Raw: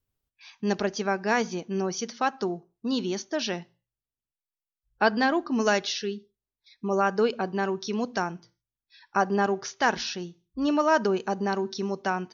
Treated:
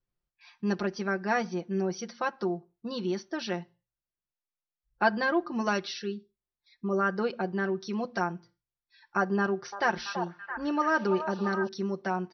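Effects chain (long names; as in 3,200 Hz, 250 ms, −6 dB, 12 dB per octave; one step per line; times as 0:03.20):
Chebyshev low-pass with heavy ripple 5,900 Hz, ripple 3 dB
high-shelf EQ 2,400 Hz −8 dB
comb filter 5.7 ms, depth 71%
0:09.39–0:11.69: echo through a band-pass that steps 333 ms, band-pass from 800 Hz, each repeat 0.7 octaves, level −4.5 dB
level −1.5 dB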